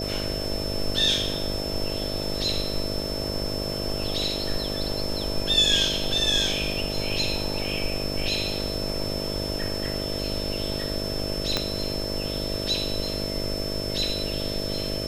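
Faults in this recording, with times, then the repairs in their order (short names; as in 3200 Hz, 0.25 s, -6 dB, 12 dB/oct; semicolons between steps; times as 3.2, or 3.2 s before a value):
buzz 50 Hz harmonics 13 -32 dBFS
tone 5300 Hz -32 dBFS
11.57 pop -8 dBFS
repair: de-click; de-hum 50 Hz, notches 13; notch 5300 Hz, Q 30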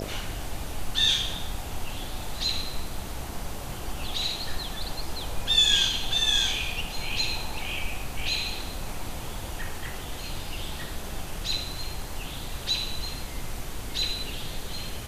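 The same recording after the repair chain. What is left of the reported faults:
11.57 pop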